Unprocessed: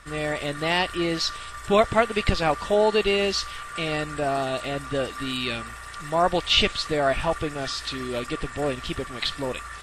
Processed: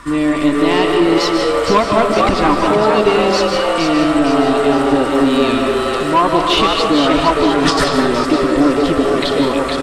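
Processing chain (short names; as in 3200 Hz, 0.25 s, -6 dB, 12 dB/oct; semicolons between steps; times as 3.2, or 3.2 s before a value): in parallel at +2 dB: compressor, threshold -31 dBFS, peak gain reduction 16.5 dB; on the sum: small resonant body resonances 290/1000 Hz, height 17 dB, ringing for 50 ms; on a send: frequency-shifting echo 0.463 s, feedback 49%, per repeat +130 Hz, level -5 dB; on the sum: soft clip -8 dBFS, distortion -16 dB; 7.51–8.04 transient shaper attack -12 dB, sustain +12 dB; digital reverb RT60 1.3 s, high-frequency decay 0.5×, pre-delay 0.11 s, DRR 3 dB; gain +1.5 dB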